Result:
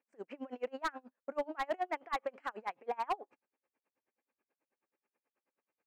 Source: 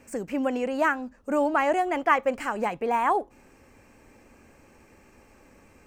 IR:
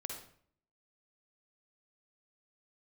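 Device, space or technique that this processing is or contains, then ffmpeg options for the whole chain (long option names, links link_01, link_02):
helicopter radio: -af "agate=range=-20dB:threshold=-42dB:ratio=16:detection=peak,highpass=390,lowpass=2800,aeval=exprs='val(0)*pow(10,-32*(0.5-0.5*cos(2*PI*9.3*n/s))/20)':channel_layout=same,asoftclip=type=hard:threshold=-23.5dB,volume=-4dB"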